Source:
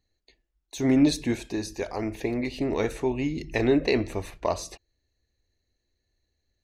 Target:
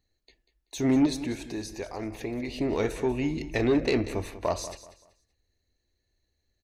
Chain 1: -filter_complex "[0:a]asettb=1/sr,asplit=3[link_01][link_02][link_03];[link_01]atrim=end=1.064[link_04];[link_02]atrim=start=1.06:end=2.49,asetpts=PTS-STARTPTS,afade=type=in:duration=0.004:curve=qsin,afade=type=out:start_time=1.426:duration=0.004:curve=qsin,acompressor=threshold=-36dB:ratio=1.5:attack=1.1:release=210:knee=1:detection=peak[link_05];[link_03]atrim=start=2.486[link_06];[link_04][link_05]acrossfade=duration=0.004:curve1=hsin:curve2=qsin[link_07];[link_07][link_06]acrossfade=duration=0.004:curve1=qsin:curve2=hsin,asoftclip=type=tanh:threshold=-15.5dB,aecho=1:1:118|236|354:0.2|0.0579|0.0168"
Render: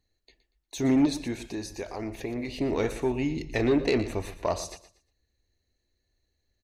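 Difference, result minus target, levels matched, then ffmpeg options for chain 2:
echo 73 ms early
-filter_complex "[0:a]asettb=1/sr,asplit=3[link_01][link_02][link_03];[link_01]atrim=end=1.064[link_04];[link_02]atrim=start=1.06:end=2.49,asetpts=PTS-STARTPTS,afade=type=in:duration=0.004:curve=qsin,afade=type=out:start_time=1.426:duration=0.004:curve=qsin,acompressor=threshold=-36dB:ratio=1.5:attack=1.1:release=210:knee=1:detection=peak[link_05];[link_03]atrim=start=2.486[link_06];[link_04][link_05]acrossfade=duration=0.004:curve1=hsin:curve2=qsin[link_07];[link_07][link_06]acrossfade=duration=0.004:curve1=qsin:curve2=hsin,asoftclip=type=tanh:threshold=-15.5dB,aecho=1:1:191|382|573:0.2|0.0579|0.0168"

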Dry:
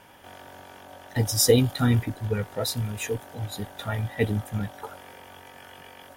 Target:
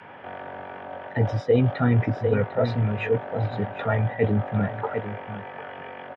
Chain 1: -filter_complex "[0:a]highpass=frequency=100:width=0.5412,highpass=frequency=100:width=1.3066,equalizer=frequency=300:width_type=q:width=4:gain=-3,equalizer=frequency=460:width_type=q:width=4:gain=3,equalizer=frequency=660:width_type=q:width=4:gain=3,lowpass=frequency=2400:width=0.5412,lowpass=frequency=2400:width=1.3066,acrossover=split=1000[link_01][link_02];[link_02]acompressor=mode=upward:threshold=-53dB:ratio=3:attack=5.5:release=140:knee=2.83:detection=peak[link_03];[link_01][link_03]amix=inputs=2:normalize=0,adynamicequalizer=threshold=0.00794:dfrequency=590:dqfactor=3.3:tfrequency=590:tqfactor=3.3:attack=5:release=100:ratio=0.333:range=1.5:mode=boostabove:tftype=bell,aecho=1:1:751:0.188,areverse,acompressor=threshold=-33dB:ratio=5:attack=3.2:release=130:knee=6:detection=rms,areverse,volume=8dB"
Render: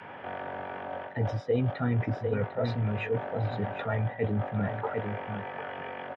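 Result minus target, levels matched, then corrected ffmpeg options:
downward compressor: peak gain reduction +7.5 dB
-filter_complex "[0:a]highpass=frequency=100:width=0.5412,highpass=frequency=100:width=1.3066,equalizer=frequency=300:width_type=q:width=4:gain=-3,equalizer=frequency=460:width_type=q:width=4:gain=3,equalizer=frequency=660:width_type=q:width=4:gain=3,lowpass=frequency=2400:width=0.5412,lowpass=frequency=2400:width=1.3066,acrossover=split=1000[link_01][link_02];[link_02]acompressor=mode=upward:threshold=-53dB:ratio=3:attack=5.5:release=140:knee=2.83:detection=peak[link_03];[link_01][link_03]amix=inputs=2:normalize=0,adynamicequalizer=threshold=0.00794:dfrequency=590:dqfactor=3.3:tfrequency=590:tqfactor=3.3:attack=5:release=100:ratio=0.333:range=1.5:mode=boostabove:tftype=bell,aecho=1:1:751:0.188,areverse,acompressor=threshold=-23.5dB:ratio=5:attack=3.2:release=130:knee=6:detection=rms,areverse,volume=8dB"

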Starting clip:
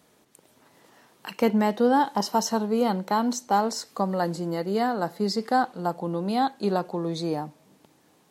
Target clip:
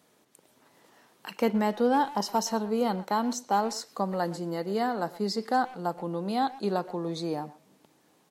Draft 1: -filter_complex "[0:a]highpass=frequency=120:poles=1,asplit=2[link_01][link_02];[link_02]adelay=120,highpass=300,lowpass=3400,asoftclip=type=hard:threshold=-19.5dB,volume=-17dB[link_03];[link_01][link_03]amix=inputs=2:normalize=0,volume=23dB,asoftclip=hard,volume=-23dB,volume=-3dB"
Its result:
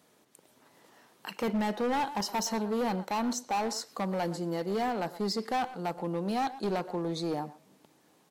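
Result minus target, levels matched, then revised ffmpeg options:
gain into a clipping stage and back: distortion +27 dB
-filter_complex "[0:a]highpass=frequency=120:poles=1,asplit=2[link_01][link_02];[link_02]adelay=120,highpass=300,lowpass=3400,asoftclip=type=hard:threshold=-19.5dB,volume=-17dB[link_03];[link_01][link_03]amix=inputs=2:normalize=0,volume=12dB,asoftclip=hard,volume=-12dB,volume=-3dB"

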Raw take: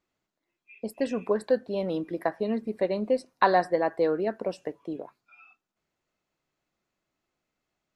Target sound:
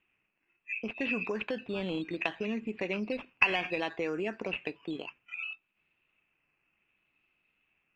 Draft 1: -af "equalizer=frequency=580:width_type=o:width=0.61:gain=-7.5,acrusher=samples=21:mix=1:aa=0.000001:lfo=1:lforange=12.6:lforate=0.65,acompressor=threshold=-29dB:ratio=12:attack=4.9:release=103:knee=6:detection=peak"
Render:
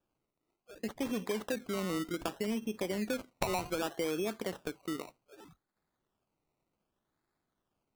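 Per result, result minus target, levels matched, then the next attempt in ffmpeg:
2,000 Hz band −8.0 dB; sample-and-hold swept by an LFO: distortion +8 dB
-af "equalizer=frequency=580:width_type=o:width=0.61:gain=-7.5,acrusher=samples=21:mix=1:aa=0.000001:lfo=1:lforange=12.6:lforate=0.65,acompressor=threshold=-29dB:ratio=12:attack=4.9:release=103:knee=6:detection=peak,lowpass=frequency=2600:width_type=q:width=12"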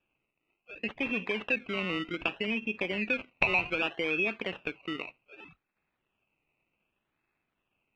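sample-and-hold swept by an LFO: distortion +8 dB
-af "equalizer=frequency=580:width_type=o:width=0.61:gain=-7.5,acrusher=samples=9:mix=1:aa=0.000001:lfo=1:lforange=5.4:lforate=0.65,acompressor=threshold=-29dB:ratio=12:attack=4.9:release=103:knee=6:detection=peak,lowpass=frequency=2600:width_type=q:width=12"

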